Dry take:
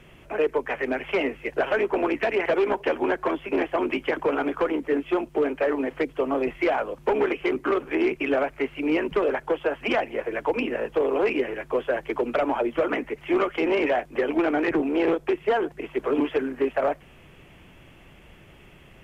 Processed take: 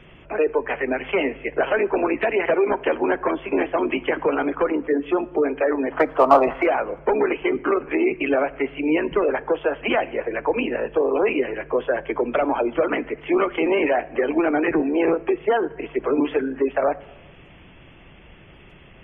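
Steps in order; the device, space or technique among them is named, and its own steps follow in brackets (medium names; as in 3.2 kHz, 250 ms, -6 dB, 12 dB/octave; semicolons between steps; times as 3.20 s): spectral gate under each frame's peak -30 dB strong; 5.92–6.66 s: high-order bell 970 Hz +15 dB; parallel distortion (in parallel at -8 dB: hard clipper -15 dBFS, distortion -17 dB); on the sum: plate-style reverb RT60 1.2 s, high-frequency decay 0.8×, DRR 18 dB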